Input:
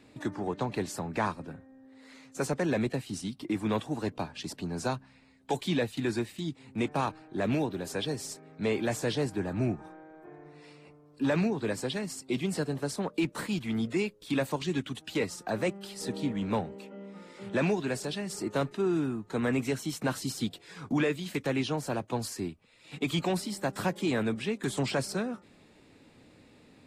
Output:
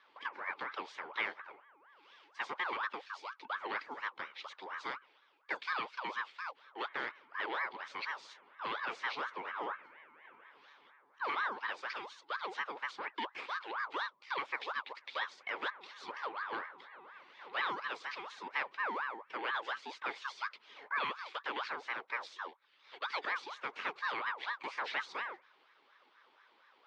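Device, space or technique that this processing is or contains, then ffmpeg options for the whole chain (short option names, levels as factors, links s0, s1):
voice changer toy: -af "aeval=exprs='val(0)*sin(2*PI*1000*n/s+1000*0.45/4.2*sin(2*PI*4.2*n/s))':c=same,highpass=460,equalizer=f=700:t=q:w=4:g=-8,equalizer=f=2200:t=q:w=4:g=6,equalizer=f=3500:t=q:w=4:g=3,lowpass=f=4500:w=0.5412,lowpass=f=4500:w=1.3066,volume=0.562"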